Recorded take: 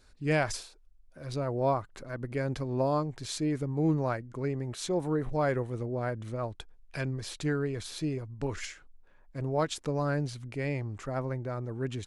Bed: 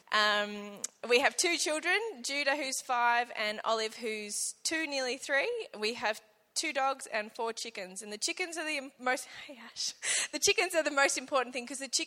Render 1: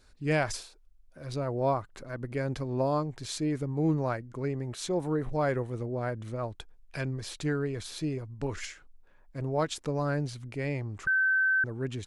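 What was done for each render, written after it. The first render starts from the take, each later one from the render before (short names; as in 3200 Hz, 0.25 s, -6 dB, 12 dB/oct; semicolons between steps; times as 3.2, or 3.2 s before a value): 11.07–11.64 bleep 1540 Hz -22 dBFS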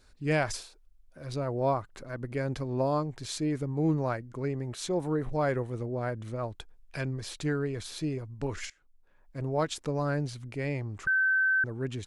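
8.7–9.41 fade in, from -20 dB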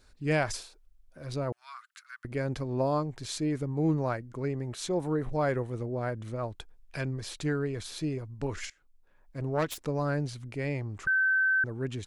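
1.52–2.25 elliptic high-pass 1300 Hz, stop band 60 dB; 9.4–9.84 self-modulated delay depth 0.17 ms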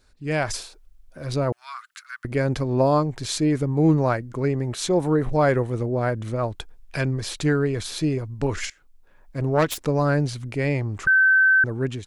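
AGC gain up to 9 dB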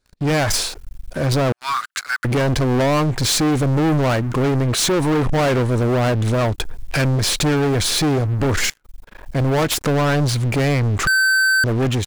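compressor 1.5:1, threshold -31 dBFS, peak gain reduction 6.5 dB; sample leveller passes 5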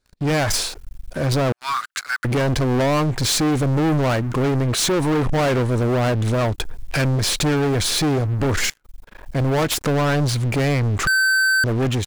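gain -1.5 dB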